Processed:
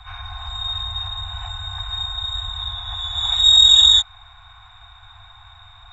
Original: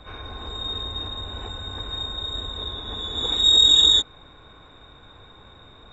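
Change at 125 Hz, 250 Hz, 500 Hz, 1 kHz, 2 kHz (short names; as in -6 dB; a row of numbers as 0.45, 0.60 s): +3.5 dB, under -25 dB, under -10 dB, +4.0 dB, +4.0 dB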